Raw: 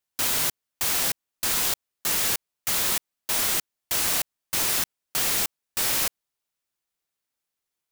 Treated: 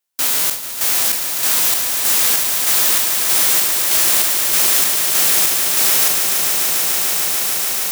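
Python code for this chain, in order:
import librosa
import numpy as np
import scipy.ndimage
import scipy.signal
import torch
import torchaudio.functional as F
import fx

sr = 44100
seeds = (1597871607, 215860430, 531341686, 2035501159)

y = fx.spec_trails(x, sr, decay_s=0.42)
y = fx.highpass(y, sr, hz=220.0, slope=6)
y = fx.high_shelf(y, sr, hz=5700.0, db=4.5)
y = fx.echo_swell(y, sr, ms=146, loudest=8, wet_db=-9)
y = y * librosa.db_to_amplitude(2.5)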